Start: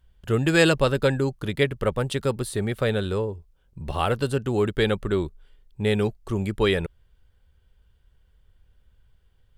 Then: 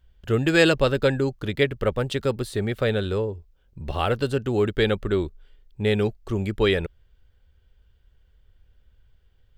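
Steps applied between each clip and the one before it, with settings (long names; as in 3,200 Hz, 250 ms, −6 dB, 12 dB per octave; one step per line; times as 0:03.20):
graphic EQ with 15 bands 160 Hz −4 dB, 1,000 Hz −4 dB, 10,000 Hz −10 dB
level +1.5 dB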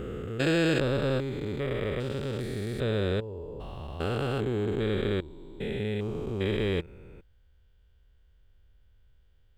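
spectrum averaged block by block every 400 ms
level −2 dB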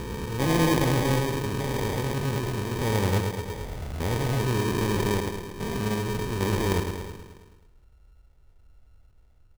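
bass and treble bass +4 dB, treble +10 dB
repeating echo 108 ms, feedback 59%, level −5.5 dB
decimation without filtering 32×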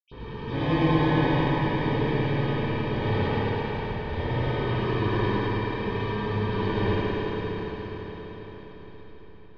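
convolution reverb RT60 5.5 s, pre-delay 76 ms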